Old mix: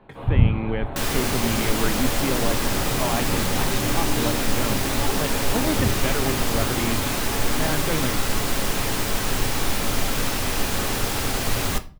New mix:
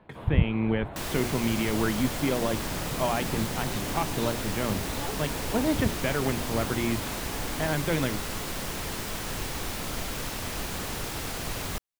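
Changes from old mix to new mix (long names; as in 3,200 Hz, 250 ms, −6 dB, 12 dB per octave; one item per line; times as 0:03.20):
second sound −7.0 dB
reverb: off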